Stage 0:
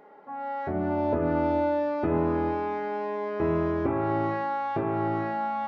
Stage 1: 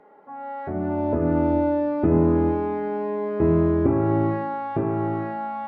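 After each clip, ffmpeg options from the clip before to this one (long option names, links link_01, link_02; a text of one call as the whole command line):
ffmpeg -i in.wav -filter_complex "[0:a]aemphasis=mode=reproduction:type=75kf,acrossover=split=400|1900[link_01][link_02][link_03];[link_01]dynaudnorm=framelen=340:gausssize=7:maxgain=9.5dB[link_04];[link_04][link_02][link_03]amix=inputs=3:normalize=0" out.wav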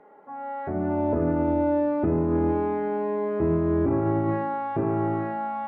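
ffmpeg -i in.wav -af "bass=frequency=250:gain=-1,treble=frequency=4000:gain=-10,alimiter=limit=-15.5dB:level=0:latency=1:release=34" out.wav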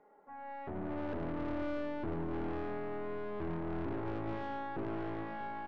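ffmpeg -i in.wav -af "aeval=exprs='(tanh(25.1*val(0)+0.7)-tanh(0.7))/25.1':channel_layout=same,aecho=1:1:639:0.2,volume=-7.5dB" out.wav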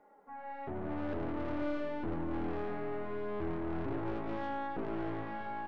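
ffmpeg -i in.wav -af "flanger=delay=3.5:depth=6.2:regen=-39:speed=0.44:shape=sinusoidal,volume=5dB" out.wav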